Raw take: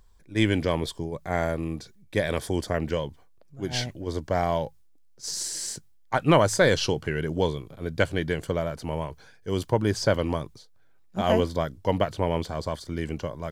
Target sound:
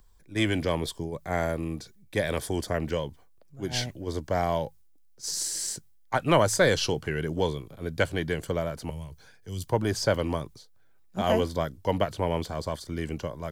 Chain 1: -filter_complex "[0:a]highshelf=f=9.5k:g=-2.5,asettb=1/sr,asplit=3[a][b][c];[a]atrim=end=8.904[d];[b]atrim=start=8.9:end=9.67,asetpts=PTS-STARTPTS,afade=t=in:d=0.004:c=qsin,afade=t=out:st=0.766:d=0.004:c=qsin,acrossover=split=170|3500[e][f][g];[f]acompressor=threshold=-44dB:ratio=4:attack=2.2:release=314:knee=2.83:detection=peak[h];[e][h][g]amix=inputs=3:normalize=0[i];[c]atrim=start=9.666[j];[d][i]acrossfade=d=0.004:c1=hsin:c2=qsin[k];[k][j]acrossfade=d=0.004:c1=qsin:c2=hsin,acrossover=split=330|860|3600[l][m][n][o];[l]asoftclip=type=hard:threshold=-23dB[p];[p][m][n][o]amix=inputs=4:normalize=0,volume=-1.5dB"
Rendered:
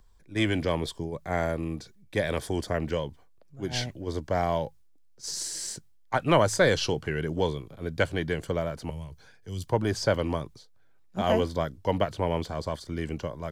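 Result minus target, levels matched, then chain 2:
8000 Hz band -3.0 dB
-filter_complex "[0:a]highshelf=f=9.5k:g=7.5,asettb=1/sr,asplit=3[a][b][c];[a]atrim=end=8.904[d];[b]atrim=start=8.9:end=9.67,asetpts=PTS-STARTPTS,afade=t=in:d=0.004:c=qsin,afade=t=out:st=0.766:d=0.004:c=qsin,acrossover=split=170|3500[e][f][g];[f]acompressor=threshold=-44dB:ratio=4:attack=2.2:release=314:knee=2.83:detection=peak[h];[e][h][g]amix=inputs=3:normalize=0[i];[c]atrim=start=9.666[j];[d][i]acrossfade=d=0.004:c1=hsin:c2=qsin[k];[k][j]acrossfade=d=0.004:c1=qsin:c2=hsin,acrossover=split=330|860|3600[l][m][n][o];[l]asoftclip=type=hard:threshold=-23dB[p];[p][m][n][o]amix=inputs=4:normalize=0,volume=-1.5dB"

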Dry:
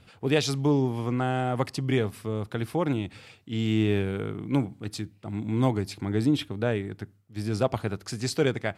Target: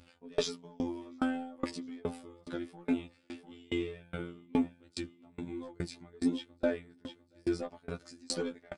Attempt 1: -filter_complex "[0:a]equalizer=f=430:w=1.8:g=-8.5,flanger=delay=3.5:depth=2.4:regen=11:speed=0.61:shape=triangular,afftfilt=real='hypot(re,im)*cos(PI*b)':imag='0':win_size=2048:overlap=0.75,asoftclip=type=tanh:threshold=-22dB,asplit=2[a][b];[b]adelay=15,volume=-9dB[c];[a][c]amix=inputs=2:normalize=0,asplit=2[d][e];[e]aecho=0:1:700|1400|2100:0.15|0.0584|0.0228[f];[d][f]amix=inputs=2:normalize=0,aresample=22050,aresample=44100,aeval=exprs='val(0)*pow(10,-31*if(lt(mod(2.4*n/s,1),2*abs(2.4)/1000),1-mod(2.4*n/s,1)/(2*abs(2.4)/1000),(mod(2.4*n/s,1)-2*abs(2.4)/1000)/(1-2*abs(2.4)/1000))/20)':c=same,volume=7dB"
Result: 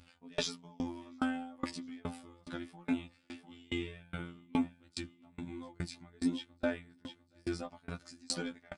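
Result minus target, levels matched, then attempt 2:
500 Hz band -3.5 dB
-filter_complex "[0:a]equalizer=f=430:w=1.8:g=2,flanger=delay=3.5:depth=2.4:regen=11:speed=0.61:shape=triangular,afftfilt=real='hypot(re,im)*cos(PI*b)':imag='0':win_size=2048:overlap=0.75,asoftclip=type=tanh:threshold=-22dB,asplit=2[a][b];[b]adelay=15,volume=-9dB[c];[a][c]amix=inputs=2:normalize=0,asplit=2[d][e];[e]aecho=0:1:700|1400|2100:0.15|0.0584|0.0228[f];[d][f]amix=inputs=2:normalize=0,aresample=22050,aresample=44100,aeval=exprs='val(0)*pow(10,-31*if(lt(mod(2.4*n/s,1),2*abs(2.4)/1000),1-mod(2.4*n/s,1)/(2*abs(2.4)/1000),(mod(2.4*n/s,1)-2*abs(2.4)/1000)/(1-2*abs(2.4)/1000))/20)':c=same,volume=7dB"

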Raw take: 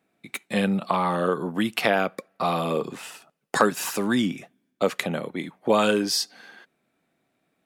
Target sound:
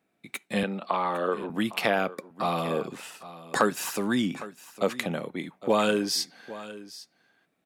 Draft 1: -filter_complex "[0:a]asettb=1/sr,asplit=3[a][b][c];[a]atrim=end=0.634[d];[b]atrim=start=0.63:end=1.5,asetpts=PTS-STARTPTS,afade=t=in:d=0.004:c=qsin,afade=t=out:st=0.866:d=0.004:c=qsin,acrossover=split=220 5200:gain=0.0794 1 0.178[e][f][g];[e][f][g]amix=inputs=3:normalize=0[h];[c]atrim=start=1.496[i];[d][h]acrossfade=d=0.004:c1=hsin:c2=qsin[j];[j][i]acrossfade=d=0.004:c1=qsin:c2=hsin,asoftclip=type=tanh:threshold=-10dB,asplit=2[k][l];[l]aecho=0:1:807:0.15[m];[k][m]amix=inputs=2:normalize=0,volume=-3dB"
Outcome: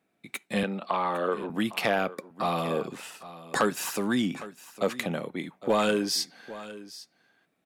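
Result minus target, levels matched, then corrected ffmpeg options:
soft clip: distortion +16 dB
-filter_complex "[0:a]asettb=1/sr,asplit=3[a][b][c];[a]atrim=end=0.634[d];[b]atrim=start=0.63:end=1.5,asetpts=PTS-STARTPTS,afade=t=in:d=0.004:c=qsin,afade=t=out:st=0.866:d=0.004:c=qsin,acrossover=split=220 5200:gain=0.0794 1 0.178[e][f][g];[e][f][g]amix=inputs=3:normalize=0[h];[c]atrim=start=1.496[i];[d][h]acrossfade=d=0.004:c1=hsin:c2=qsin[j];[j][i]acrossfade=d=0.004:c1=qsin:c2=hsin,asoftclip=type=tanh:threshold=0dB,asplit=2[k][l];[l]aecho=0:1:807:0.15[m];[k][m]amix=inputs=2:normalize=0,volume=-3dB"

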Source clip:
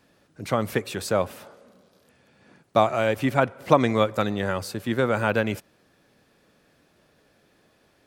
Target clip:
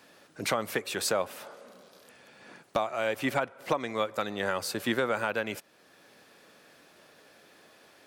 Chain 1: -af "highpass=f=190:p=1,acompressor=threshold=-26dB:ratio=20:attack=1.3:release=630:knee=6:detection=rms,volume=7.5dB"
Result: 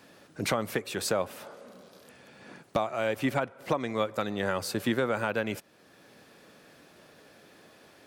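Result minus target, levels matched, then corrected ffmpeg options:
250 Hz band +3.0 dB
-af "highpass=f=520:p=1,acompressor=threshold=-26dB:ratio=20:attack=1.3:release=630:knee=6:detection=rms,volume=7.5dB"

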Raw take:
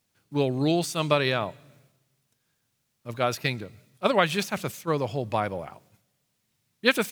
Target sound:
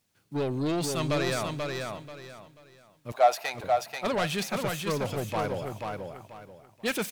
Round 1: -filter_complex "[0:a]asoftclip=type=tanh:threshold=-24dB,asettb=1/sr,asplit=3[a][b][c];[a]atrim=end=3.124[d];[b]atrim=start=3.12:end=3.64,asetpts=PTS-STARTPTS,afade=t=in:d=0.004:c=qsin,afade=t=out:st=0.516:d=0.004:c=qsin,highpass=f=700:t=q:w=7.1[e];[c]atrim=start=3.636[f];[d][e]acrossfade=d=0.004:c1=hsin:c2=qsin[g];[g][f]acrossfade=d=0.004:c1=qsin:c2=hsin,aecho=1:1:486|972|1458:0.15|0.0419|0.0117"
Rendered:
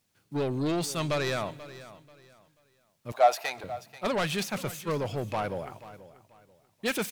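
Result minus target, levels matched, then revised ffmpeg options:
echo-to-direct -12 dB
-filter_complex "[0:a]asoftclip=type=tanh:threshold=-24dB,asettb=1/sr,asplit=3[a][b][c];[a]atrim=end=3.124[d];[b]atrim=start=3.12:end=3.64,asetpts=PTS-STARTPTS,afade=t=in:d=0.004:c=qsin,afade=t=out:st=0.516:d=0.004:c=qsin,highpass=f=700:t=q:w=7.1[e];[c]atrim=start=3.636[f];[d][e]acrossfade=d=0.004:c1=hsin:c2=qsin[g];[g][f]acrossfade=d=0.004:c1=qsin:c2=hsin,aecho=1:1:486|972|1458|1944:0.596|0.167|0.0467|0.0131"

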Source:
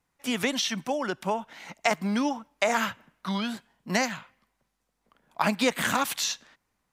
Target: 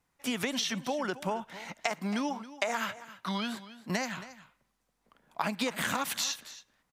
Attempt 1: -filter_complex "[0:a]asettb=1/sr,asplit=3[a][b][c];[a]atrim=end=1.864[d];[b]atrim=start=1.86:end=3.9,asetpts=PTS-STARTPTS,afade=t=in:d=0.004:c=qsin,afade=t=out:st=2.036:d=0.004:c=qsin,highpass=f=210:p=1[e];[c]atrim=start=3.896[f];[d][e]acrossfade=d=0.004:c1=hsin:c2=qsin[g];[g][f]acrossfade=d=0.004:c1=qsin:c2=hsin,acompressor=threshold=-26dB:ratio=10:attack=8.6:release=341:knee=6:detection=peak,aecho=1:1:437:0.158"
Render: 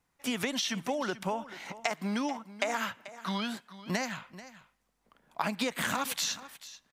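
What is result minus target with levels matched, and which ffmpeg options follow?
echo 0.164 s late
-filter_complex "[0:a]asettb=1/sr,asplit=3[a][b][c];[a]atrim=end=1.864[d];[b]atrim=start=1.86:end=3.9,asetpts=PTS-STARTPTS,afade=t=in:d=0.004:c=qsin,afade=t=out:st=2.036:d=0.004:c=qsin,highpass=f=210:p=1[e];[c]atrim=start=3.896[f];[d][e]acrossfade=d=0.004:c1=hsin:c2=qsin[g];[g][f]acrossfade=d=0.004:c1=qsin:c2=hsin,acompressor=threshold=-26dB:ratio=10:attack=8.6:release=341:knee=6:detection=peak,aecho=1:1:273:0.158"

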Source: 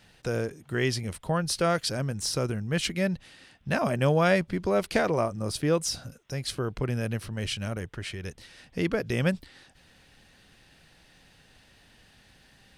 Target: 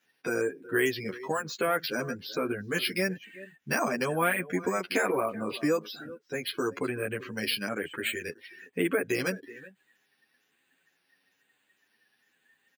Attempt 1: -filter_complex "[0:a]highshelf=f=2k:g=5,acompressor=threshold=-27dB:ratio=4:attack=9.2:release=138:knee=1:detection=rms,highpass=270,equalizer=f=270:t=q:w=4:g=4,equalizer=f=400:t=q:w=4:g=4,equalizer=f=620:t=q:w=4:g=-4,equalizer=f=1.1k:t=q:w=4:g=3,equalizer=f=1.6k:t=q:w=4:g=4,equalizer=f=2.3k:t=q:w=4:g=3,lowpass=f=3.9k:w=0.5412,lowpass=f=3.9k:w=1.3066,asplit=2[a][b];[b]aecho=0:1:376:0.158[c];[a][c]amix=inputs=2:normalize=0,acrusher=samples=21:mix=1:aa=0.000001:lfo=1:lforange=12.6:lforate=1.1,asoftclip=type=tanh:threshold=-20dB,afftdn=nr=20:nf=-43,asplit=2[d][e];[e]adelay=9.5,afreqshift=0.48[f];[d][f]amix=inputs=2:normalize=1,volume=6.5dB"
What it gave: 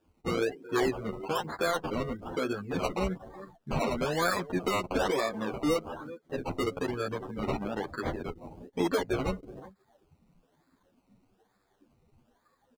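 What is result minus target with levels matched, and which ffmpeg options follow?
soft clip: distortion +20 dB; decimation with a swept rate: distortion +12 dB
-filter_complex "[0:a]highshelf=f=2k:g=5,acompressor=threshold=-27dB:ratio=4:attack=9.2:release=138:knee=1:detection=rms,highpass=270,equalizer=f=270:t=q:w=4:g=4,equalizer=f=400:t=q:w=4:g=4,equalizer=f=620:t=q:w=4:g=-4,equalizer=f=1.1k:t=q:w=4:g=3,equalizer=f=1.6k:t=q:w=4:g=4,equalizer=f=2.3k:t=q:w=4:g=3,lowpass=f=3.9k:w=0.5412,lowpass=f=3.9k:w=1.3066,asplit=2[a][b];[b]aecho=0:1:376:0.158[c];[a][c]amix=inputs=2:normalize=0,acrusher=samples=5:mix=1:aa=0.000001:lfo=1:lforange=3:lforate=1.1,asoftclip=type=tanh:threshold=-8.5dB,afftdn=nr=20:nf=-43,asplit=2[d][e];[e]adelay=9.5,afreqshift=0.48[f];[d][f]amix=inputs=2:normalize=1,volume=6.5dB"

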